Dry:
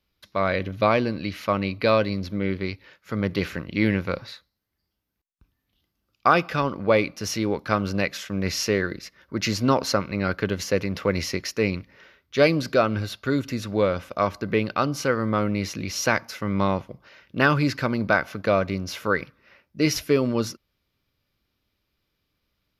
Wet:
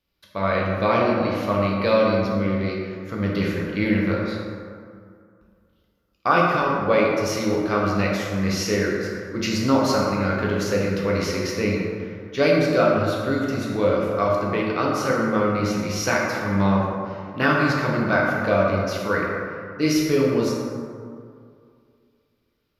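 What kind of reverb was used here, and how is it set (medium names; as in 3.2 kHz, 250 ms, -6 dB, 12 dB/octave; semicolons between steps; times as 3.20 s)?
plate-style reverb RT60 2.3 s, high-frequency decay 0.4×, DRR -4 dB; trim -3.5 dB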